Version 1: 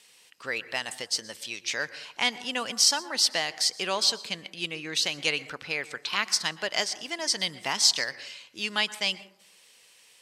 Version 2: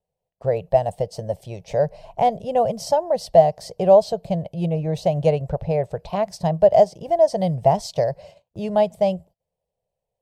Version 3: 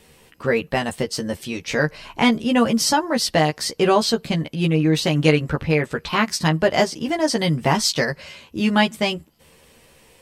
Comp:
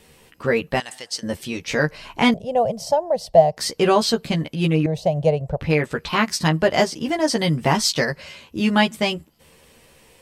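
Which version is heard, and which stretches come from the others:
3
0.8–1.23 from 1
2.34–3.57 from 2
4.86–5.61 from 2

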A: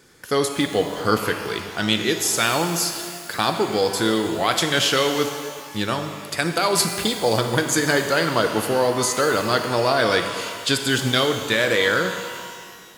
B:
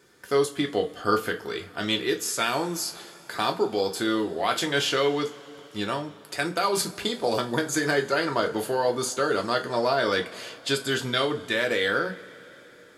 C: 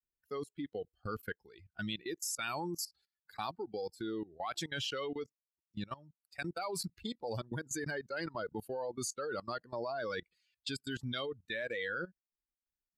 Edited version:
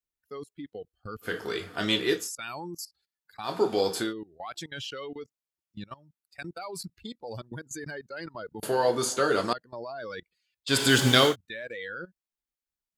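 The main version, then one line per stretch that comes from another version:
C
1.29–2.22 from B, crossfade 0.16 s
3.51–4.06 from B, crossfade 0.16 s
8.63–9.53 from B
10.72–11.31 from A, crossfade 0.10 s

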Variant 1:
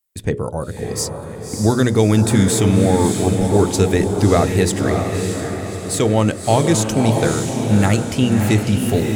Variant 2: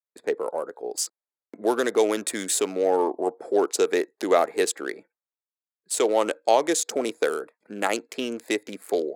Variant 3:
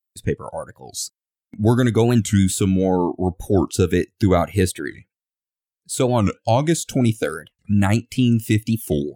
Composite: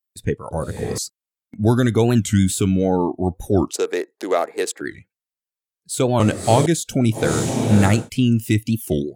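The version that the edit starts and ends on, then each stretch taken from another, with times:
3
0.51–0.98 from 1
3.73–4.81 from 2
6.2–6.66 from 1
7.23–7.98 from 1, crossfade 0.24 s

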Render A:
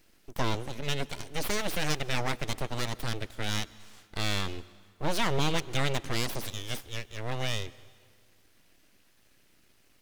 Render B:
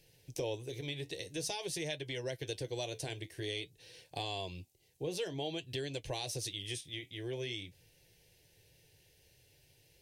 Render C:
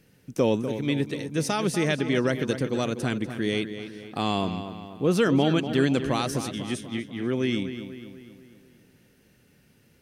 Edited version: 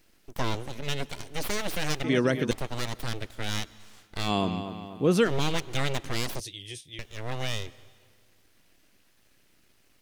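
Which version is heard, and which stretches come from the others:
A
2.04–2.51 from C
4.27–5.28 from C, crossfade 0.10 s
6.4–6.99 from B

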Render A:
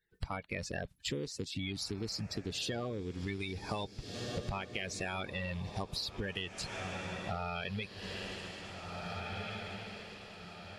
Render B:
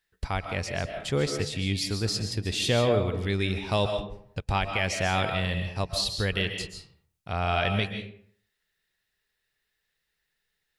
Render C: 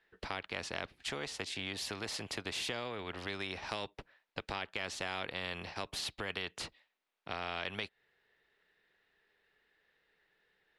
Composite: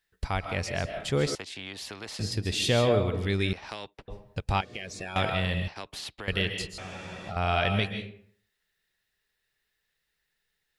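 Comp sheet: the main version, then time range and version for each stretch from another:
B
1.35–2.19 from C
3.53–4.08 from C
4.61–5.16 from A
5.68–6.28 from C
6.78–7.36 from A

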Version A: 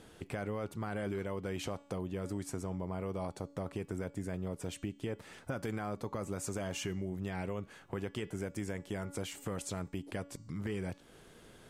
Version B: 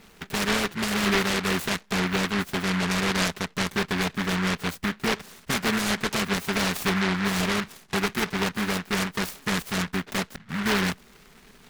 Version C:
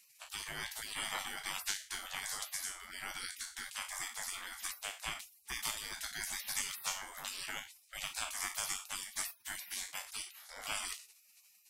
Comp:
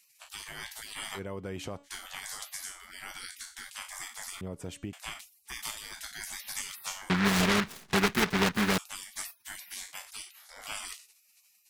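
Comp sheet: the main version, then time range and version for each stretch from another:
C
1.17–1.86 from A, crossfade 0.06 s
4.41–4.93 from A
7.1–8.78 from B

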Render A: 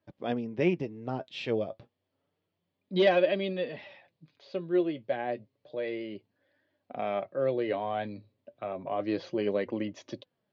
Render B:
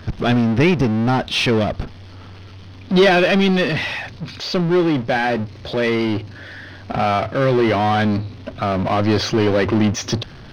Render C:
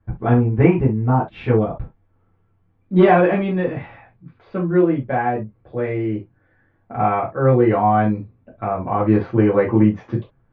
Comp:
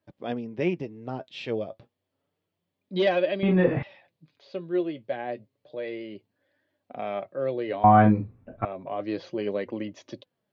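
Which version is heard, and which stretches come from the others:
A
3.43–3.83 from C
7.84–8.65 from C
not used: B

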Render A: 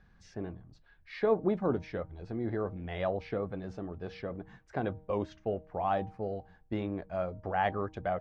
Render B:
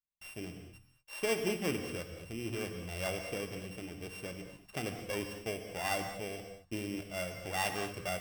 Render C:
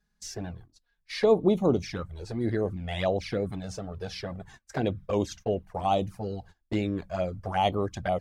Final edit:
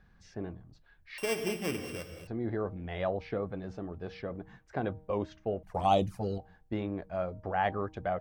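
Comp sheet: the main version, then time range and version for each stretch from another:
A
1.18–2.27 from B
5.63–6.38 from C

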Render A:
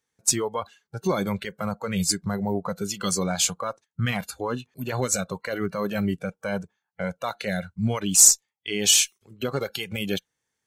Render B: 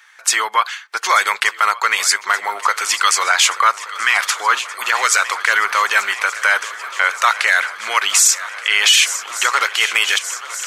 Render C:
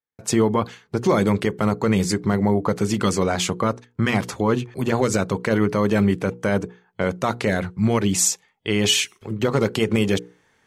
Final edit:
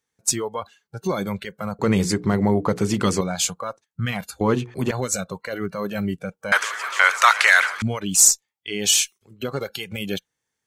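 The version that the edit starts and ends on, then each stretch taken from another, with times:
A
1.79–3.21 from C
4.41–4.91 from C
6.52–7.82 from B

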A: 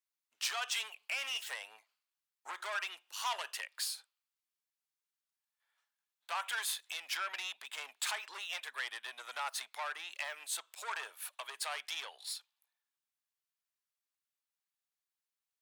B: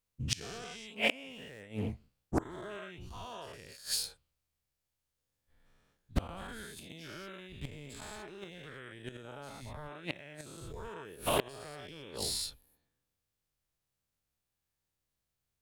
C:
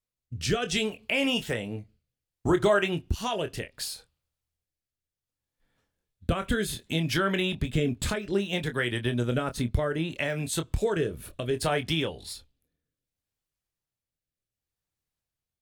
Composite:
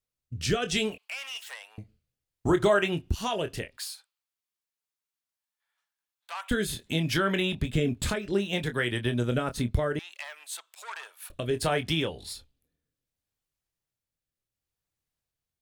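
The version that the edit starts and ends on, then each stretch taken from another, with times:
C
0.98–1.78 from A
3.77–6.51 from A
9.99–11.3 from A
not used: B

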